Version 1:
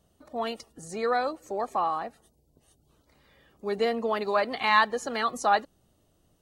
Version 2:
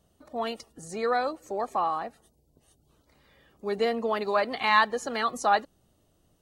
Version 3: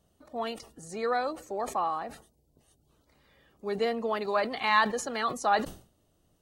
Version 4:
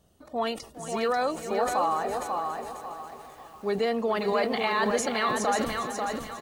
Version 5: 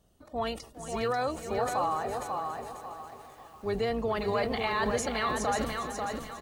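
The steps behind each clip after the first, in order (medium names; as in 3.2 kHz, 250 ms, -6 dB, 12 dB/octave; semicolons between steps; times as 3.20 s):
no audible change
decay stretcher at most 130 dB/s; trim -2.5 dB
peak limiter -22.5 dBFS, peak gain reduction 11.5 dB; feedback delay 410 ms, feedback 53%, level -13.5 dB; bit-crushed delay 540 ms, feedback 35%, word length 10-bit, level -4.5 dB; trim +5 dB
octave divider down 2 oct, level -5 dB; trim -3.5 dB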